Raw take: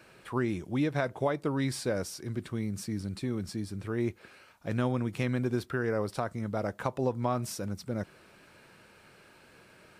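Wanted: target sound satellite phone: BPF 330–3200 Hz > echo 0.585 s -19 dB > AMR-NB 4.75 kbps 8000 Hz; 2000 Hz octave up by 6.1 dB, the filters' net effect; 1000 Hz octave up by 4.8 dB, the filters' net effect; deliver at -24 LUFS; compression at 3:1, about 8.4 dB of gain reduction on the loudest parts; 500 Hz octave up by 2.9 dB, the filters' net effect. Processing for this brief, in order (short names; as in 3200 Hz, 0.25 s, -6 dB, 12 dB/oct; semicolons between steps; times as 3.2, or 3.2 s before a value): bell 500 Hz +3.5 dB; bell 1000 Hz +3.5 dB; bell 2000 Hz +7 dB; compressor 3:1, threshold -32 dBFS; BPF 330–3200 Hz; echo 0.585 s -19 dB; gain +16.5 dB; AMR-NB 4.75 kbps 8000 Hz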